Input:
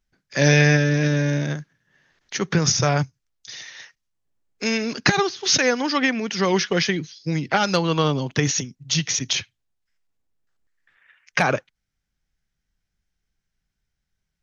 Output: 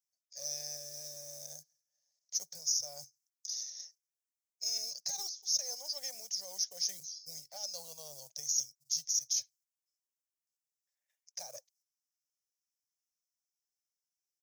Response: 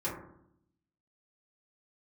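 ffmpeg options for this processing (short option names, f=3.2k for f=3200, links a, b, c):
-filter_complex "[0:a]agate=range=-7dB:threshold=-55dB:ratio=16:detection=peak,acrossover=split=780[a][b];[a]acrusher=bits=6:mode=log:mix=0:aa=0.000001[c];[c][b]amix=inputs=2:normalize=0,firequalizer=gain_entry='entry(150,0);entry(240,-18);entry(350,-18);entry(570,7);entry(1300,-25);entry(1900,-20);entry(2900,-22);entry(5300,6);entry(10000,1)':delay=0.05:min_phase=1,areverse,acompressor=threshold=-29dB:ratio=4,areverse,aeval=exprs='0.178*(cos(1*acos(clip(val(0)/0.178,-1,1)))-cos(1*PI/2))+0.00282*(cos(6*acos(clip(val(0)/0.178,-1,1)))-cos(6*PI/2))':c=same,aderivative"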